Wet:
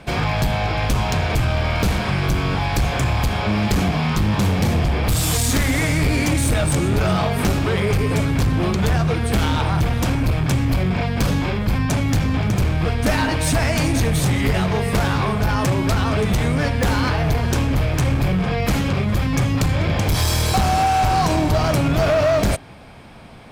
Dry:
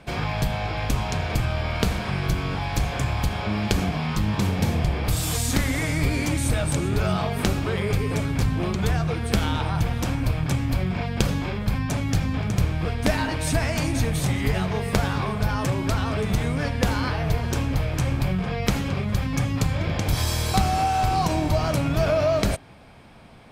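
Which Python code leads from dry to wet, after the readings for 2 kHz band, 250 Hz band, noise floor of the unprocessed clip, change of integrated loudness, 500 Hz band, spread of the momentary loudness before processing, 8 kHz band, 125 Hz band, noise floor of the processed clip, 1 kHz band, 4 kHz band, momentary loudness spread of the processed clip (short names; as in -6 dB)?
+5.5 dB, +5.0 dB, -29 dBFS, +5.0 dB, +5.0 dB, 4 LU, +5.0 dB, +5.0 dB, -23 dBFS, +5.5 dB, +5.0 dB, 3 LU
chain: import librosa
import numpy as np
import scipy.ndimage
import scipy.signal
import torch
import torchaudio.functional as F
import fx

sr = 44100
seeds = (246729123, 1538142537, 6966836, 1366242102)

y = np.clip(x, -10.0 ** (-20.0 / 20.0), 10.0 ** (-20.0 / 20.0))
y = F.gain(torch.from_numpy(y), 6.5).numpy()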